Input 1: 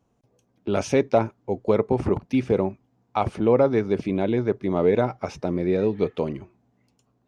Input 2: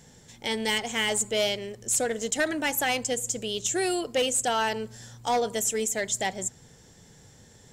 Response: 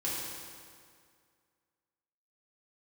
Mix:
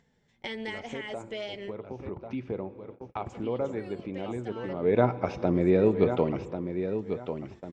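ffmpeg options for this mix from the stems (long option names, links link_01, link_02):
-filter_complex "[0:a]volume=-0.5dB,afade=type=in:start_time=1.99:duration=0.42:silence=0.334965,afade=type=in:start_time=4.8:duration=0.23:silence=0.223872,asplit=4[link_01][link_02][link_03][link_04];[link_02]volume=-19.5dB[link_05];[link_03]volume=-8dB[link_06];[1:a]equalizer=frequency=2000:width=4.3:gain=5,acompressor=threshold=-26dB:ratio=6,flanger=delay=4.3:depth=1:regen=-46:speed=1.2:shape=triangular,volume=-6dB,asplit=3[link_07][link_08][link_09];[link_07]atrim=end=1.74,asetpts=PTS-STARTPTS,afade=type=out:start_time=1.736:duration=0.004:curve=hsin[link_10];[link_08]atrim=start=1.74:end=3.26,asetpts=PTS-STARTPTS,volume=0[link_11];[link_09]atrim=start=3.26,asetpts=PTS-STARTPTS,afade=type=in:duration=0.004:curve=hsin[link_12];[link_10][link_11][link_12]concat=n=3:v=0:a=1[link_13];[link_04]apad=whole_len=340495[link_14];[link_13][link_14]sidechaincompress=threshold=-39dB:ratio=4:attack=8.4:release=512[link_15];[2:a]atrim=start_sample=2205[link_16];[link_05][link_16]afir=irnorm=-1:irlink=0[link_17];[link_06]aecho=0:1:1094|2188|3282|4376:1|0.24|0.0576|0.0138[link_18];[link_01][link_15][link_17][link_18]amix=inputs=4:normalize=0,lowpass=3400,agate=range=-59dB:threshold=-51dB:ratio=16:detection=peak,acompressor=mode=upward:threshold=-30dB:ratio=2.5"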